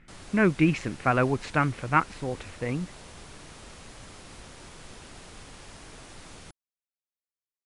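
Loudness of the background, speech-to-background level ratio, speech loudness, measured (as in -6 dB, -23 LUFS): -46.5 LUFS, 20.0 dB, -26.5 LUFS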